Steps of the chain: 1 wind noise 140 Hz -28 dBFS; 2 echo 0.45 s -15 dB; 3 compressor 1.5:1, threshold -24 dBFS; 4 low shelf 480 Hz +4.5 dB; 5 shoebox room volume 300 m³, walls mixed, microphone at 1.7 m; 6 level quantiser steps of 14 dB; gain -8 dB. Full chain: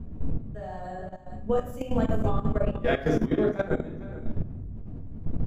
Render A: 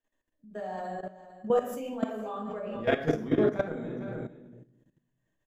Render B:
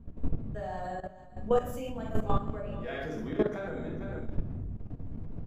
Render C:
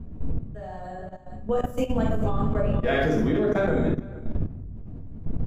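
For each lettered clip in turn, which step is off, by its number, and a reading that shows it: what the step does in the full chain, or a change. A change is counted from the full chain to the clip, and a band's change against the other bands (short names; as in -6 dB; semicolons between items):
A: 1, 125 Hz band -8.0 dB; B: 4, crest factor change +2.5 dB; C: 3, momentary loudness spread change +2 LU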